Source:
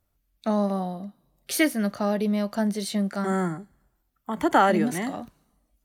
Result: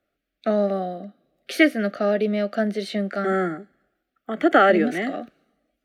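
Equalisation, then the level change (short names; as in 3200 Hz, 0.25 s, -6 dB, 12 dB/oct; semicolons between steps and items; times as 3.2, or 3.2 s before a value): Butterworth band-stop 960 Hz, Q 1.8; three-band isolator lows -22 dB, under 240 Hz, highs -20 dB, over 3600 Hz; +7.0 dB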